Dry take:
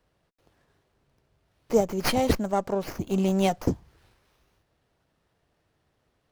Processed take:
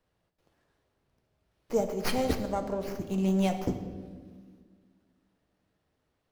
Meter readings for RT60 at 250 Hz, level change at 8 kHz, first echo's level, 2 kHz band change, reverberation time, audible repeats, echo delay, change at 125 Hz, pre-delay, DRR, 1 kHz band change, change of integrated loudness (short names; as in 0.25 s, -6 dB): 2.4 s, -6.0 dB, none, -5.5 dB, 1.5 s, none, none, -3.0 dB, 4 ms, 6.0 dB, -6.0 dB, -4.5 dB